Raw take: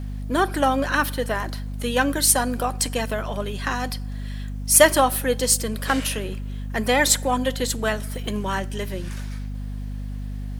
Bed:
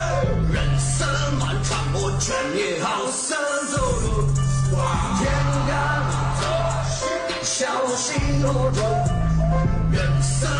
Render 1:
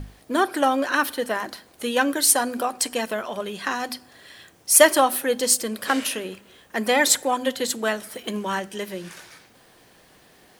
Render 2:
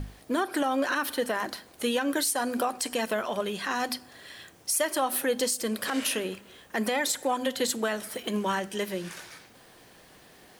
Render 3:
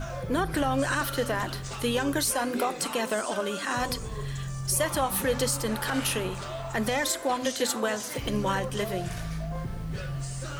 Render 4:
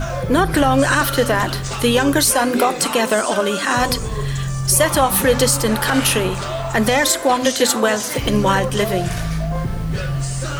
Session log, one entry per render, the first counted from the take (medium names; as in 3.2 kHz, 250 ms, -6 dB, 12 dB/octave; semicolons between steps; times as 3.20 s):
hum notches 50/100/150/200/250 Hz
compression 6:1, threshold -21 dBFS, peak gain reduction 12.5 dB; peak limiter -17 dBFS, peak gain reduction 9 dB
add bed -14 dB
trim +11.5 dB